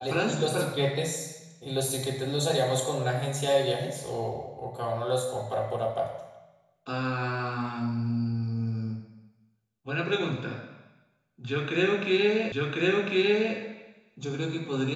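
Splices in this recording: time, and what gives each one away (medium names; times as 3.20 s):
12.52 s: repeat of the last 1.05 s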